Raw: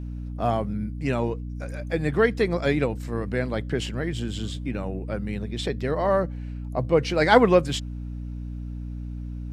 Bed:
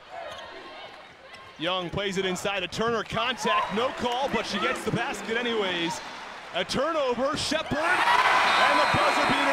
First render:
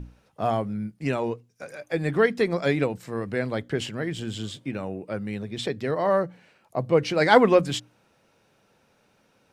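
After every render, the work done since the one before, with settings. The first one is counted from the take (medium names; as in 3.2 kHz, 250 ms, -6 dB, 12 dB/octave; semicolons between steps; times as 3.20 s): hum notches 60/120/180/240/300 Hz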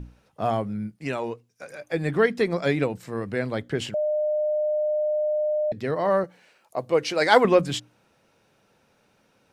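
0.96–1.70 s: bass shelf 360 Hz -6.5 dB; 3.94–5.72 s: bleep 606 Hz -21 dBFS; 6.24–7.45 s: tone controls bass -12 dB, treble +5 dB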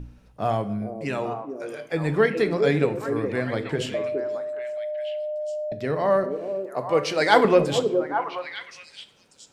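on a send: repeats whose band climbs or falls 416 ms, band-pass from 370 Hz, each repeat 1.4 oct, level -2.5 dB; on the sum: simulated room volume 220 m³, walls mixed, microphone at 0.34 m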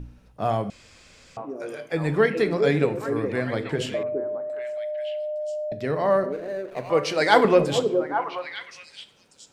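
0.70–1.37 s: room tone; 4.03–4.50 s: low-pass 1 kHz; 6.32–6.90 s: median filter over 41 samples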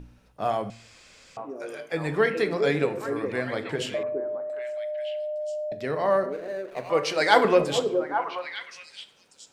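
bass shelf 300 Hz -7.5 dB; de-hum 114.1 Hz, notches 17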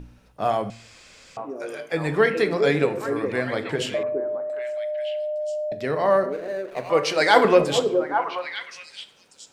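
trim +3.5 dB; peak limiter -3 dBFS, peak gain reduction 3 dB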